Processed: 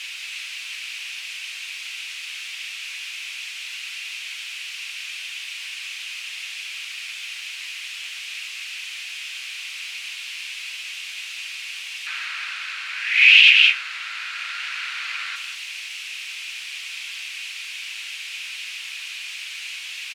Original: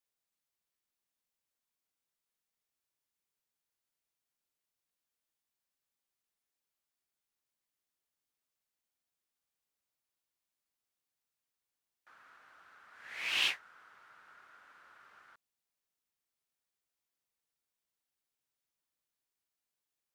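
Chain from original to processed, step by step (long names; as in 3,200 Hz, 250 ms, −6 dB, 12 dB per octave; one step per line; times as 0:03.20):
converter with a step at zero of −44 dBFS
speech leveller within 3 dB 2 s
four-pole ladder band-pass 2,800 Hz, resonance 65%
single-tap delay 189 ms −8.5 dB
on a send at −9.5 dB: convolution reverb RT60 0.40 s, pre-delay 3 ms
on the sum: boost into a limiter +30 dB
level −1 dB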